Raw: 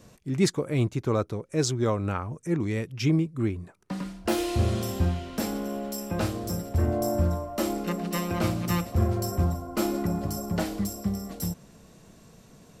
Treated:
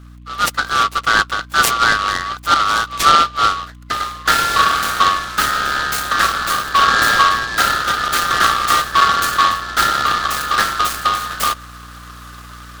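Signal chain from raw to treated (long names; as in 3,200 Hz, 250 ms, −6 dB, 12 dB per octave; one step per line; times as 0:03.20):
neighbouring bands swapped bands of 1,000 Hz
high-pass filter 1,300 Hz 12 dB per octave
automatic gain control gain up to 16 dB
mains hum 60 Hz, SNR 22 dB
short delay modulated by noise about 2,200 Hz, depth 0.051 ms
level +1 dB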